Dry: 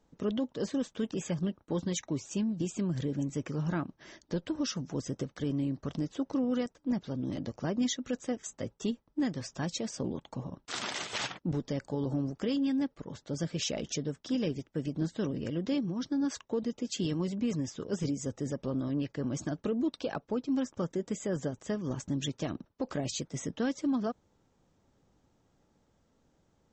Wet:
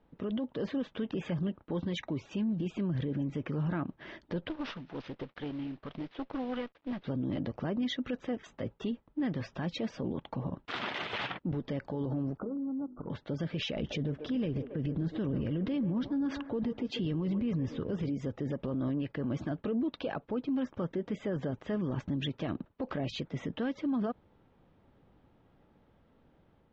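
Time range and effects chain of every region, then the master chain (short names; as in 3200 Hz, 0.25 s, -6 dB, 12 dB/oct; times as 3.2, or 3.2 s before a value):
4.49–7.05 CVSD 32 kbps + low shelf 300 Hz -10.5 dB + tube stage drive 30 dB, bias 0.8
12.37–13.1 brick-wall FIR low-pass 1500 Hz + notches 50/100/150/200/250/300/350/400 Hz + compressor 5:1, threshold -40 dBFS
13.76–18.02 low shelf 160 Hz +10 dB + band-limited delay 0.139 s, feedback 50%, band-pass 770 Hz, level -11 dB
whole clip: LPF 3300 Hz 24 dB/oct; limiter -31.5 dBFS; AGC gain up to 3 dB; gain +2.5 dB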